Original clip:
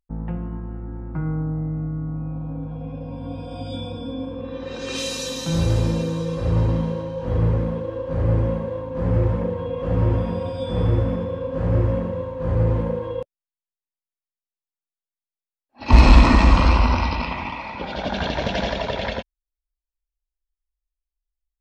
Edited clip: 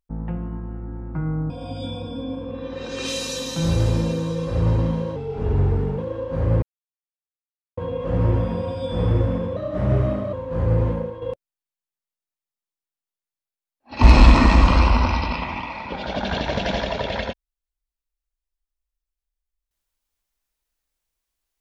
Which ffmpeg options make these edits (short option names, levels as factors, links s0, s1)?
-filter_complex "[0:a]asplit=9[s0][s1][s2][s3][s4][s5][s6][s7][s8];[s0]atrim=end=1.502[s9];[s1]atrim=start=3.398:end=7.064[s10];[s2]atrim=start=7.06:end=7.76,asetpts=PTS-STARTPTS,asetrate=37485,aresample=44100[s11];[s3]atrim=start=7.756:end=8.4,asetpts=PTS-STARTPTS,afade=t=out:st=0.64:d=0.004:c=hsin[s12];[s4]atrim=start=8.4:end=9.55,asetpts=PTS-STARTPTS,volume=0[s13];[s5]atrim=start=9.55:end=11.344,asetpts=PTS-STARTPTS,afade=t=in:d=0.004:c=hsin[s14];[s6]atrim=start=11.34:end=12.22,asetpts=PTS-STARTPTS,asetrate=50715,aresample=44100,atrim=end_sample=33746,asetpts=PTS-STARTPTS[s15];[s7]atrim=start=12.216:end=13.11,asetpts=PTS-STARTPTS,afade=t=out:st=0.564:d=0.33:silence=0.375837[s16];[s8]atrim=start=13.11,asetpts=PTS-STARTPTS,afade=t=in:d=0.004:c=hsin:silence=0.375837[s17];[s9][s10]acrossfade=d=0.004:c1=hsin:c2=hsin[s18];[s18][s11]acrossfade=d=0.004:c1=hsin:c2=hsin[s19];[s12][s13][s14]concat=n=3:v=0:a=1[s20];[s19][s20]acrossfade=d=0.004:c1=hsin:c2=hsin[s21];[s21][s15]acrossfade=d=0.004:c1=hsin:c2=hsin[s22];[s16][s17]concat=n=2:v=0:a=1[s23];[s22][s23]acrossfade=d=0.004:c1=hsin:c2=hsin"